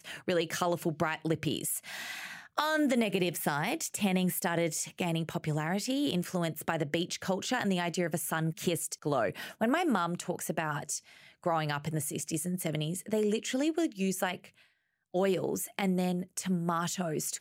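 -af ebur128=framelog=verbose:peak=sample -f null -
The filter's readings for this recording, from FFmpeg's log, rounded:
Integrated loudness:
  I:         -31.9 LUFS
  Threshold: -42.0 LUFS
Loudness range:
  LRA:         2.0 LU
  Threshold: -52.0 LUFS
  LRA low:   -32.9 LUFS
  LRA high:  -30.8 LUFS
Sample peak:
  Peak:      -13.0 dBFS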